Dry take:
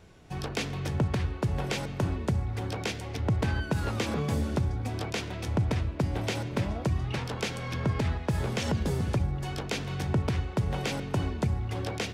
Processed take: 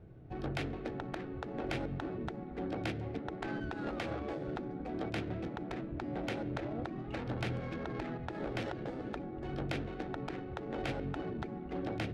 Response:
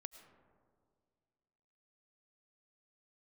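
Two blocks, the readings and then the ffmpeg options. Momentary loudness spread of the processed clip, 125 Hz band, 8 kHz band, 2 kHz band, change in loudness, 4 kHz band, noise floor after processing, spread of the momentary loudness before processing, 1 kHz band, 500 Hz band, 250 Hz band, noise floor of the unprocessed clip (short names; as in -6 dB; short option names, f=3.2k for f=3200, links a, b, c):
4 LU, -13.5 dB, -19.0 dB, -7.0 dB, -9.0 dB, -11.5 dB, -44 dBFS, 4 LU, -5.5 dB, -5.0 dB, -5.5 dB, -38 dBFS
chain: -af "afftfilt=real='re*lt(hypot(re,im),0.126)':imag='im*lt(hypot(re,im),0.126)':win_size=1024:overlap=0.75,adynamicsmooth=sensitivity=2:basefreq=1.1k,equalizer=f=125:t=o:w=0.33:g=10,equalizer=f=315:t=o:w=0.33:g=5,equalizer=f=1k:t=o:w=0.33:g=-9,equalizer=f=4k:t=o:w=0.33:g=3,volume=-1dB"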